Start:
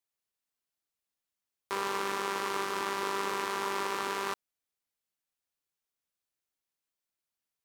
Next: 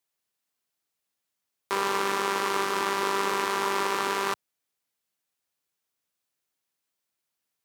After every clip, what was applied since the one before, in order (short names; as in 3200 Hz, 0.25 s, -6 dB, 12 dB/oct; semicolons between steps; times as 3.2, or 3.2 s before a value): HPF 86 Hz; gain +6 dB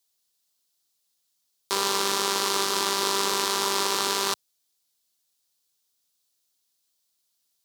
resonant high shelf 3000 Hz +9 dB, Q 1.5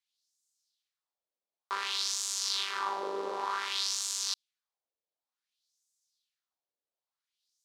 LFO band-pass sine 0.55 Hz 510–7200 Hz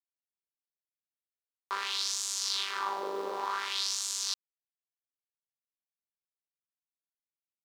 bit-crush 10-bit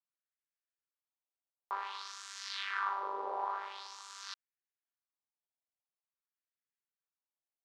wah 0.49 Hz 690–1800 Hz, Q 2.3; gain +3 dB